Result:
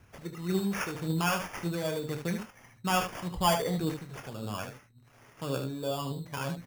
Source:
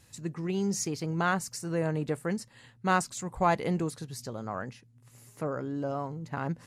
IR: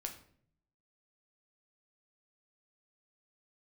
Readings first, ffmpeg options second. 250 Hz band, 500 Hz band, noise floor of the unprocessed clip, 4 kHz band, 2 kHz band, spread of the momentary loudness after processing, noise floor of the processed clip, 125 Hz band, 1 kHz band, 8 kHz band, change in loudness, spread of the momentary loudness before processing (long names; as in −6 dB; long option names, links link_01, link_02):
−1.0 dB, −1.0 dB, −60 dBFS, +6.5 dB, −1.5 dB, 12 LU, −60 dBFS, −0.5 dB, −1.5 dB, −2.5 dB, −0.5 dB, 11 LU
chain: -filter_complex "[0:a]acrossover=split=330|1200|5100[link_01][link_02][link_03][link_04];[link_03]volume=27.5dB,asoftclip=hard,volume=-27.5dB[link_05];[link_01][link_02][link_05][link_04]amix=inputs=4:normalize=0,aphaser=in_gain=1:out_gain=1:delay=2.3:decay=0.57:speed=1.8:type=triangular,acrusher=samples=11:mix=1:aa=0.000001,asplit=2[link_06][link_07];[link_07]adelay=22,volume=-13.5dB[link_08];[link_06][link_08]amix=inputs=2:normalize=0,aecho=1:1:29|75:0.316|0.398,volume=-3.5dB"